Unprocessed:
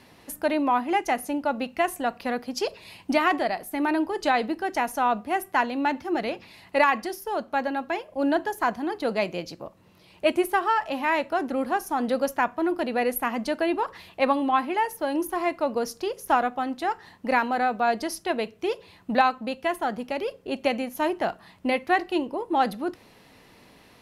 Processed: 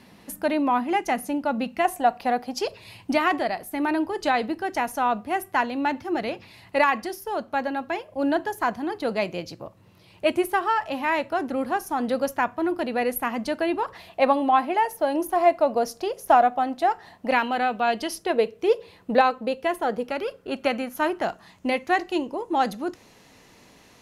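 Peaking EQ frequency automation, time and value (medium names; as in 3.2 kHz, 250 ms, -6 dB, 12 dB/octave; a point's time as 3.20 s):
peaking EQ +10.5 dB 0.42 oct
200 Hz
from 1.85 s 770 Hz
from 2.61 s 110 Hz
from 13.93 s 680 Hz
from 17.31 s 3 kHz
from 18.16 s 470 Hz
from 20.09 s 1.4 kHz
from 21.22 s 6.6 kHz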